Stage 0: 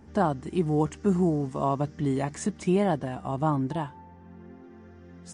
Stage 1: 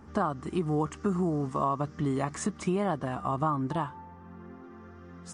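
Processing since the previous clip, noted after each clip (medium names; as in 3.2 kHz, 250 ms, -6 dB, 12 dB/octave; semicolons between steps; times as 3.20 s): peaking EQ 1.2 kHz +12.5 dB 0.44 oct; compression 4:1, threshold -25 dBFS, peak gain reduction 8 dB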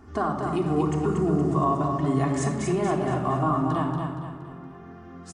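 feedback delay 234 ms, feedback 42%, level -5 dB; reverberation RT60 0.95 s, pre-delay 3 ms, DRR 0.5 dB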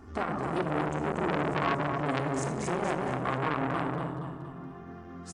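transformer saturation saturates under 1.8 kHz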